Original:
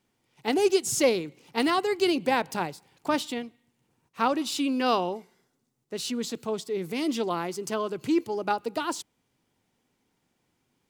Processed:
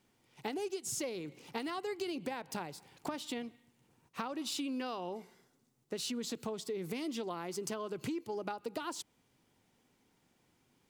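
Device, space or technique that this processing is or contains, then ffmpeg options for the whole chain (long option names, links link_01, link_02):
serial compression, peaks first: -af "acompressor=threshold=-33dB:ratio=6,acompressor=threshold=-38dB:ratio=2.5,volume=1.5dB"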